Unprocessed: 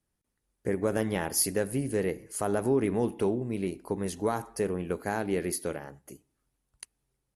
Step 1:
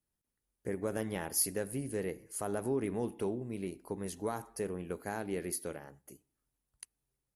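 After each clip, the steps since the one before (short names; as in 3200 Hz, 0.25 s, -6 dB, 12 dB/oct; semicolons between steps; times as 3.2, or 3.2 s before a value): high shelf 12000 Hz +10 dB; gain -7.5 dB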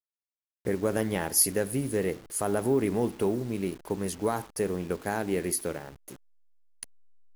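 level-crossing sampler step -51.5 dBFS; gain +8 dB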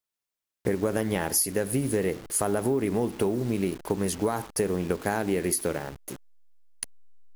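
compressor, threshold -29 dBFS, peak gain reduction 11.5 dB; gain +7 dB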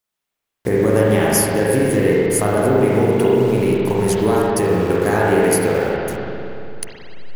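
spring tank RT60 2.7 s, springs 38/56 ms, chirp 40 ms, DRR -5.5 dB; gain +5.5 dB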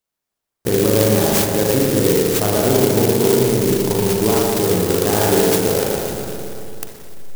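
clock jitter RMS 0.13 ms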